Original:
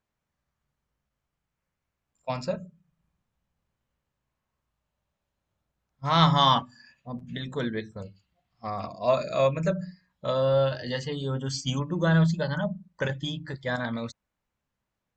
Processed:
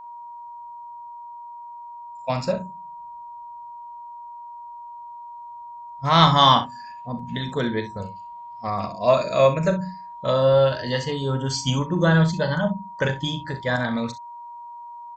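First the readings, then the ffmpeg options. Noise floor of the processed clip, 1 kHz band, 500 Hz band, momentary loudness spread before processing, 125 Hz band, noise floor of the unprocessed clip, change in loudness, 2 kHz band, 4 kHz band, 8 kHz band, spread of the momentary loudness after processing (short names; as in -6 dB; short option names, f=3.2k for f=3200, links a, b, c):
-39 dBFS, +6.5 dB, +6.0 dB, 16 LU, +4.0 dB, -84 dBFS, +5.5 dB, +6.0 dB, +6.0 dB, n/a, 21 LU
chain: -filter_complex "[0:a]aeval=exprs='val(0)+0.00631*sin(2*PI*950*n/s)':c=same,asplit=2[a][b];[b]aecho=0:1:39|64:0.266|0.211[c];[a][c]amix=inputs=2:normalize=0,volume=5.5dB"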